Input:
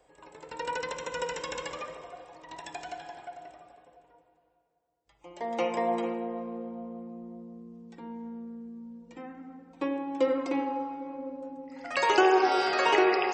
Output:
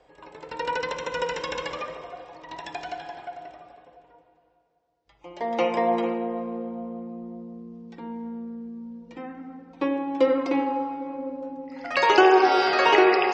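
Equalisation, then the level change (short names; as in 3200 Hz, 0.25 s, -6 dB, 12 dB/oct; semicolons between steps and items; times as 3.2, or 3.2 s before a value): LPF 5700 Hz 24 dB/oct; +5.5 dB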